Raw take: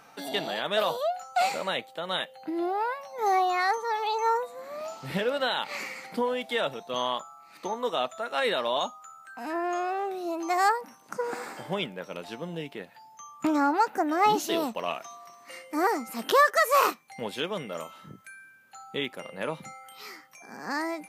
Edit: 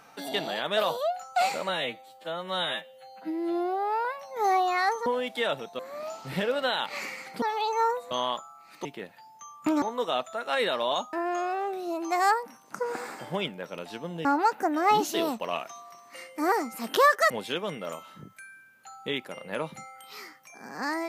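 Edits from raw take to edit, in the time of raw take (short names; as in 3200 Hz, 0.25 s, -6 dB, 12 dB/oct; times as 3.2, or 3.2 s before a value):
1.69–2.87 stretch 2×
3.88–4.57 swap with 6.2–6.93
8.98–9.51 cut
12.63–13.6 move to 7.67
16.65–17.18 cut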